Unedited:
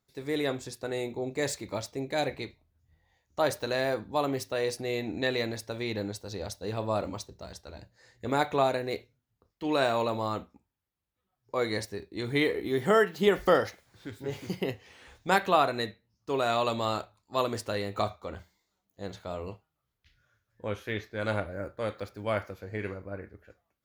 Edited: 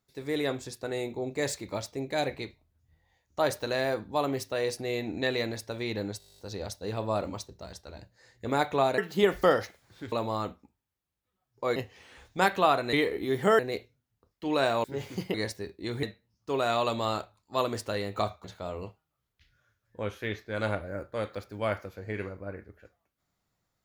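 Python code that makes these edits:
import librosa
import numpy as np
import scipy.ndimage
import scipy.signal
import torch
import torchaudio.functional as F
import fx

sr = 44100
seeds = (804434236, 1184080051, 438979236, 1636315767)

y = fx.edit(x, sr, fx.stutter(start_s=6.18, slice_s=0.02, count=11),
    fx.swap(start_s=8.78, length_s=1.25, other_s=13.02, other_length_s=1.14),
    fx.swap(start_s=11.67, length_s=0.69, other_s=14.66, other_length_s=1.17),
    fx.cut(start_s=18.24, length_s=0.85), tone=tone)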